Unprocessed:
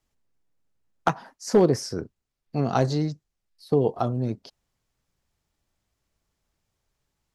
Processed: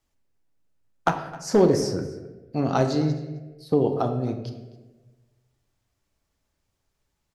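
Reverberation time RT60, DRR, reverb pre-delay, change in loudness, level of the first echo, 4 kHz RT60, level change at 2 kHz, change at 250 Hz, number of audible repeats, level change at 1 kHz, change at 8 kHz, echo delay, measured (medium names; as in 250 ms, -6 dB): 1.2 s, 5.5 dB, 3 ms, +1.0 dB, -20.0 dB, 0.75 s, +1.5 dB, +2.0 dB, 1, +1.0 dB, +0.5 dB, 264 ms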